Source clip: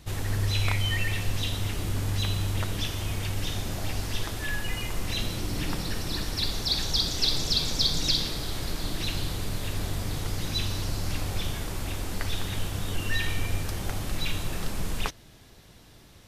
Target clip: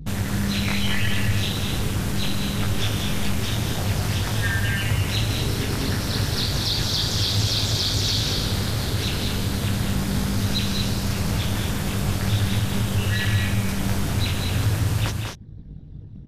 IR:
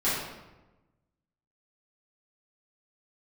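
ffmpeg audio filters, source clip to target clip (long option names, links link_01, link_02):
-filter_complex "[0:a]anlmdn=0.0631,apsyclip=23.5dB,acompressor=threshold=-28dB:ratio=2,flanger=delay=17.5:depth=6:speed=0.27,equalizer=frequency=1500:width=6.2:gain=4,aeval=exprs='val(0)*sin(2*PI*100*n/s)':channel_layout=same,asplit=2[link_01][link_02];[link_02]aecho=0:1:193|230:0.501|0.447[link_03];[link_01][link_03]amix=inputs=2:normalize=0"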